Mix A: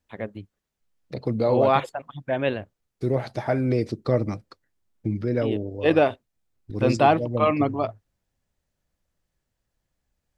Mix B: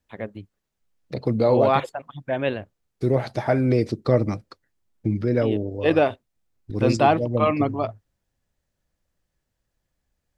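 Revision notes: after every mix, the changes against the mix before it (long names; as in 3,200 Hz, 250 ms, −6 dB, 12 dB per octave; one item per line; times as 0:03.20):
second voice +3.0 dB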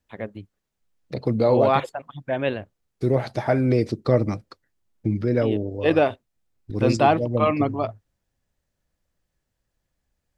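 nothing changed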